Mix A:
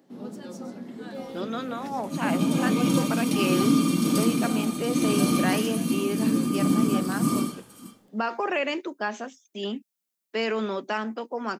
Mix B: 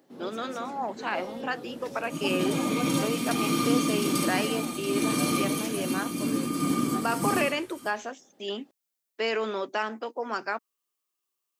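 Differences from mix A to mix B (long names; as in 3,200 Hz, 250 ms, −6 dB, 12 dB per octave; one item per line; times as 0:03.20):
speech: entry −1.15 s
second sound: add parametric band 2,000 Hz +5.5 dB 0.41 octaves
master: add parametric band 200 Hz −9 dB 0.73 octaves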